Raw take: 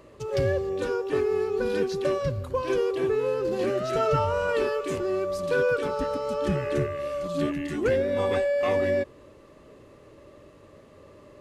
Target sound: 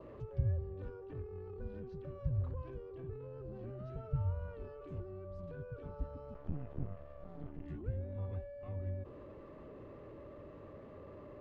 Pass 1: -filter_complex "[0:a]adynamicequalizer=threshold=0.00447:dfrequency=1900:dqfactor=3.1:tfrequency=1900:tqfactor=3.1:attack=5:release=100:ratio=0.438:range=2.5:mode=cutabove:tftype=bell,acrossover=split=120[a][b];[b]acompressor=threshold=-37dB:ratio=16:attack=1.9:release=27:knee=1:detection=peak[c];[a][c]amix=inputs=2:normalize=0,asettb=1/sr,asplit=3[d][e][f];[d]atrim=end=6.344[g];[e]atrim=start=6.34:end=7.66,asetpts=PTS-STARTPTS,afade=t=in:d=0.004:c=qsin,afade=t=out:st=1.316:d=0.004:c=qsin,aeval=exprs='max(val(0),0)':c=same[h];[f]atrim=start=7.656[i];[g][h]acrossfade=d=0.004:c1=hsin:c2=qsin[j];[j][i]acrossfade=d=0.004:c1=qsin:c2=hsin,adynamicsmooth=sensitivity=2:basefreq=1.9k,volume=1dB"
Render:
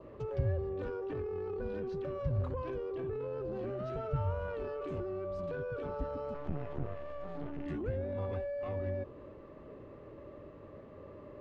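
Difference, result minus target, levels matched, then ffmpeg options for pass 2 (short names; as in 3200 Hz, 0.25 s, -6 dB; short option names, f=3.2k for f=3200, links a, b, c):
compressor: peak gain reduction -11.5 dB
-filter_complex "[0:a]adynamicequalizer=threshold=0.00447:dfrequency=1900:dqfactor=3.1:tfrequency=1900:tqfactor=3.1:attack=5:release=100:ratio=0.438:range=2.5:mode=cutabove:tftype=bell,acrossover=split=120[a][b];[b]acompressor=threshold=-49dB:ratio=16:attack=1.9:release=27:knee=1:detection=peak[c];[a][c]amix=inputs=2:normalize=0,asettb=1/sr,asplit=3[d][e][f];[d]atrim=end=6.344[g];[e]atrim=start=6.34:end=7.66,asetpts=PTS-STARTPTS,afade=t=in:d=0.004:c=qsin,afade=t=out:st=1.316:d=0.004:c=qsin,aeval=exprs='max(val(0),0)':c=same[h];[f]atrim=start=7.656[i];[g][h]acrossfade=d=0.004:c1=hsin:c2=qsin[j];[j][i]acrossfade=d=0.004:c1=qsin:c2=hsin,adynamicsmooth=sensitivity=2:basefreq=1.9k,volume=1dB"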